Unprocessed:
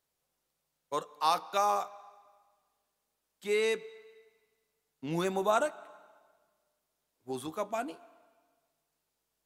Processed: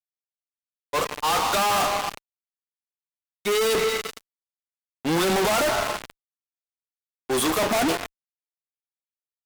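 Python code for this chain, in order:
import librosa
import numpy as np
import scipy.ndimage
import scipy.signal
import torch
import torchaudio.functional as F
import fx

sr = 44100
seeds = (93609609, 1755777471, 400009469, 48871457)

y = fx.leveller(x, sr, passes=5)
y = fx.auto_swell(y, sr, attack_ms=259.0)
y = fx.power_curve(y, sr, exponent=1.4)
y = fx.low_shelf(y, sr, hz=150.0, db=-10.5)
y = fx.fuzz(y, sr, gain_db=51.0, gate_db=-52.0)
y = y * 10.0 ** (-7.5 / 20.0)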